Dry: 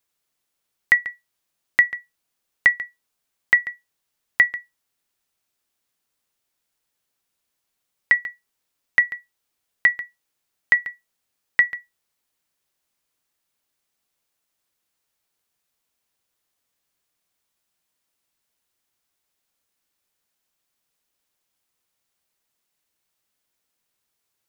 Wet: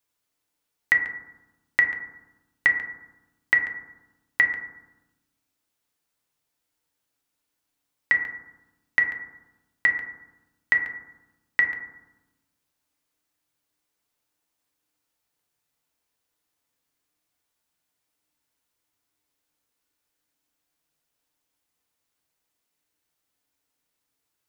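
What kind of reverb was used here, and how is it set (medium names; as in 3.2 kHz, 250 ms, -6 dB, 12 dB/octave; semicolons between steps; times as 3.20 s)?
FDN reverb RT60 1 s, low-frequency decay 1.45×, high-frequency decay 0.25×, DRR 2.5 dB; trim -3 dB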